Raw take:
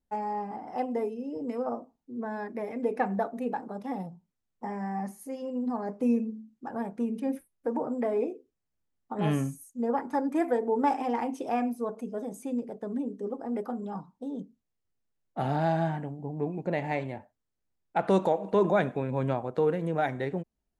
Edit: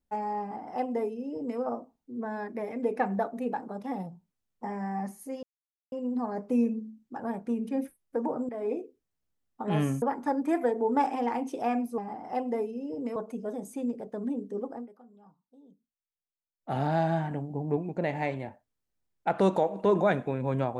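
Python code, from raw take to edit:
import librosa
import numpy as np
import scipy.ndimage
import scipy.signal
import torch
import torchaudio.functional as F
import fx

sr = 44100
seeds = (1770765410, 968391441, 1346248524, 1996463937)

y = fx.edit(x, sr, fx.duplicate(start_s=0.41, length_s=1.18, to_s=11.85),
    fx.insert_silence(at_s=5.43, length_s=0.49),
    fx.fade_in_from(start_s=8.0, length_s=0.3, floor_db=-13.0),
    fx.cut(start_s=9.53, length_s=0.36),
    fx.fade_down_up(start_s=13.35, length_s=2.14, db=-20.5, fade_s=0.21, curve='qsin'),
    fx.clip_gain(start_s=16.0, length_s=0.46, db=3.0), tone=tone)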